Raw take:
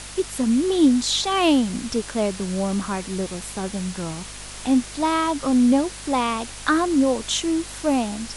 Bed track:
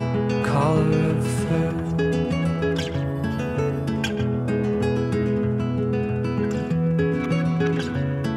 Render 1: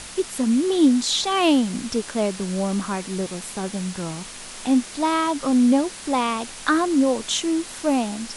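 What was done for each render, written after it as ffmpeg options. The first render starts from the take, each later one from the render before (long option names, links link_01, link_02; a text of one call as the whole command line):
ffmpeg -i in.wav -af "bandreject=frequency=50:width_type=h:width=4,bandreject=frequency=100:width_type=h:width=4,bandreject=frequency=150:width_type=h:width=4" out.wav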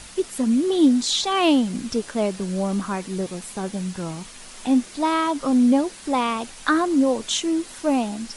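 ffmpeg -i in.wav -af "afftdn=noise_reduction=6:noise_floor=-38" out.wav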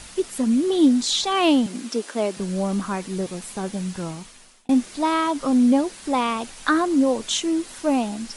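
ffmpeg -i in.wav -filter_complex "[0:a]asettb=1/sr,asplit=3[link_01][link_02][link_03];[link_01]atrim=end=1.664[link_04];[link_02]atrim=start=1.66:end=2.37,asetpts=PTS-STARTPTS,afade=type=in:duration=0.004:curve=qsin,afade=type=out:start_time=0.706:duration=0.004:curve=qsin,highpass=frequency=230:width=0.5412,highpass=frequency=230:width=1.3066[link_05];[link_03]atrim=start=2.366[link_06];[link_04][link_05]acrossfade=duration=0.004:curve1=hsin:curve2=qsin[link_07];[link_07][link_06]acrossfade=duration=0.004:curve1=qsin:curve2=hsin,asplit=2[link_08][link_09];[link_08]atrim=end=4.69,asetpts=PTS-STARTPTS,afade=type=out:start_time=4.04:duration=0.65[link_10];[link_09]atrim=start=4.69,asetpts=PTS-STARTPTS,afade=type=in:duration=0.004:curve=hsin[link_11];[link_10][link_11]concat=n=2:v=0:a=1" out.wav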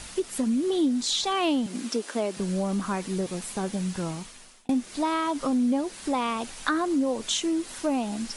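ffmpeg -i in.wav -af "acompressor=threshold=-25dB:ratio=2.5" out.wav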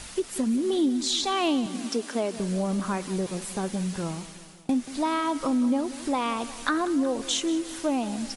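ffmpeg -i in.wav -af "aecho=1:1:183|366|549|732|915|1098:0.158|0.0935|0.0552|0.0326|0.0192|0.0113" out.wav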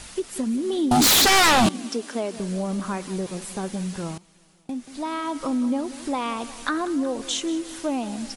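ffmpeg -i in.wav -filter_complex "[0:a]asettb=1/sr,asplit=3[link_01][link_02][link_03];[link_01]atrim=end=0.914[link_04];[link_02]atrim=start=0.91:end=1.69,asetpts=PTS-STARTPTS,afade=type=in:duration=0.004:curve=qsin,afade=type=out:start_time=0.776:duration=0.004:curve=qsin,aeval=exprs='0.224*sin(PI/2*5.62*val(0)/0.224)':channel_layout=same[link_05];[link_03]atrim=start=1.686[link_06];[link_04][link_05]acrossfade=duration=0.004:curve1=hsin:curve2=qsin[link_07];[link_07][link_06]acrossfade=duration=0.004:curve1=qsin:curve2=hsin,asplit=2[link_08][link_09];[link_08]atrim=end=4.18,asetpts=PTS-STARTPTS,afade=type=out:start_time=4.176:duration=0.004:curve=hsin:silence=0.11885[link_10];[link_09]atrim=start=4.18,asetpts=PTS-STARTPTS,afade=type=in:duration=1.36:silence=0.11885[link_11];[link_10][link_11]concat=n=2:v=0:a=1" out.wav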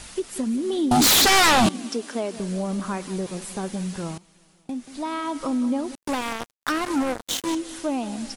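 ffmpeg -i in.wav -filter_complex "[0:a]asettb=1/sr,asplit=3[link_01][link_02][link_03];[link_01]atrim=end=5.954[link_04];[link_02]atrim=start=5.95:end=7.55,asetpts=PTS-STARTPTS,afade=type=in:duration=0.004:curve=qsin,afade=type=out:start_time=1.596:duration=0.004:curve=qsin,acrusher=bits=3:mix=0:aa=0.5[link_05];[link_03]atrim=start=7.546[link_06];[link_04][link_05]acrossfade=duration=0.004:curve1=hsin:curve2=qsin[link_07];[link_07][link_06]acrossfade=duration=0.004:curve1=qsin:curve2=hsin" out.wav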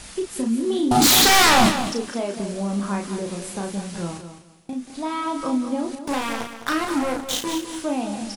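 ffmpeg -i in.wav -filter_complex "[0:a]asplit=2[link_01][link_02];[link_02]adelay=35,volume=-4dB[link_03];[link_01][link_03]amix=inputs=2:normalize=0,aecho=1:1:208|416|624:0.316|0.0601|0.0114" out.wav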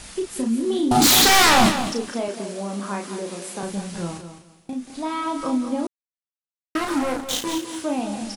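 ffmpeg -i in.wav -filter_complex "[0:a]asettb=1/sr,asplit=3[link_01][link_02][link_03];[link_01]atrim=end=2.284[link_04];[link_02]atrim=start=2.28:end=3.63,asetpts=PTS-STARTPTS,afade=type=in:duration=0.004:curve=qsin,afade=type=out:start_time=1.346:duration=0.004:curve=qsin,highpass=250[link_05];[link_03]atrim=start=3.626[link_06];[link_04][link_05]acrossfade=duration=0.004:curve1=hsin:curve2=qsin[link_07];[link_07][link_06]acrossfade=duration=0.004:curve1=qsin:curve2=hsin,asettb=1/sr,asplit=3[link_08][link_09][link_10];[link_08]atrim=end=7.584[link_11];[link_09]atrim=start=7.58:end=7.99,asetpts=PTS-STARTPTS,afade=type=in:duration=0.004:curve=qsin,afade=type=out:start_time=0.406:duration=0.004:curve=qsin,highpass=77[link_12];[link_10]atrim=start=7.986[link_13];[link_11][link_12]acrossfade=duration=0.004:curve1=hsin:curve2=qsin[link_14];[link_14][link_13]acrossfade=duration=0.004:curve1=qsin:curve2=hsin,asplit=3[link_15][link_16][link_17];[link_15]atrim=end=5.87,asetpts=PTS-STARTPTS,afade=type=out:start_time=5.866:duration=0.004:curve=hsin[link_18];[link_16]atrim=start=5.87:end=6.75,asetpts=PTS-STARTPTS,volume=0[link_19];[link_17]atrim=start=6.75,asetpts=PTS-STARTPTS,afade=type=in:duration=0.004:curve=hsin[link_20];[link_18][link_19][link_20]concat=n=3:v=0:a=1" out.wav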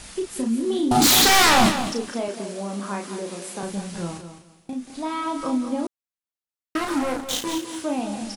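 ffmpeg -i in.wav -af "volume=-1dB" out.wav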